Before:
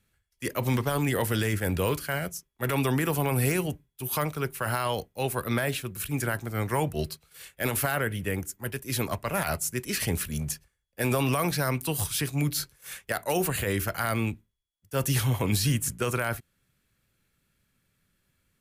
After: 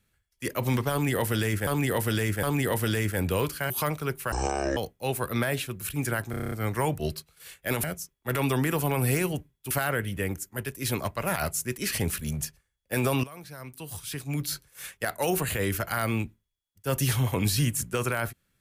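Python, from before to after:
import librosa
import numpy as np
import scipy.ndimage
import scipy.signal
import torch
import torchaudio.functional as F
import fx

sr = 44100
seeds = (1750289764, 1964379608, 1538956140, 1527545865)

y = fx.edit(x, sr, fx.repeat(start_s=0.91, length_s=0.76, count=3),
    fx.move(start_s=2.18, length_s=1.87, to_s=7.78),
    fx.speed_span(start_s=4.67, length_s=0.25, speed=0.56),
    fx.stutter(start_s=6.46, slice_s=0.03, count=8),
    fx.fade_in_from(start_s=11.31, length_s=1.44, curve='qua', floor_db=-18.0), tone=tone)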